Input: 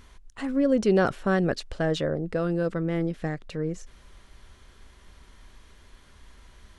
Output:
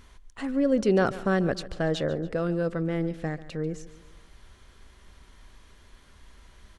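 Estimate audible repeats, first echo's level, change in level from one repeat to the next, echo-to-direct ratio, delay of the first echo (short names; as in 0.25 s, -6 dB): 3, -16.5 dB, -7.0 dB, -15.5 dB, 0.142 s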